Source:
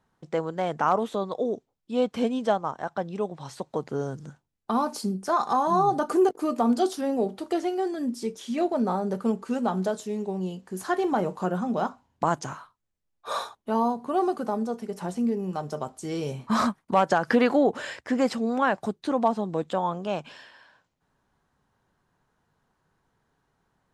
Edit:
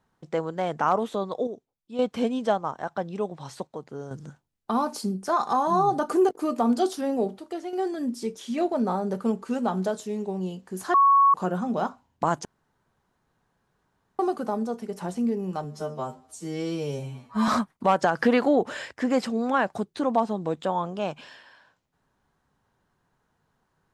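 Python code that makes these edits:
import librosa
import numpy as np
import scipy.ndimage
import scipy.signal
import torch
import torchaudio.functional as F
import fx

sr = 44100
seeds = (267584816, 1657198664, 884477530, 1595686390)

y = fx.edit(x, sr, fx.clip_gain(start_s=1.47, length_s=0.52, db=-7.5),
    fx.clip_gain(start_s=3.67, length_s=0.44, db=-7.5),
    fx.clip_gain(start_s=7.38, length_s=0.35, db=-7.0),
    fx.bleep(start_s=10.94, length_s=0.4, hz=1110.0, db=-14.0),
    fx.room_tone_fill(start_s=12.45, length_s=1.74),
    fx.stretch_span(start_s=15.64, length_s=0.92, factor=2.0), tone=tone)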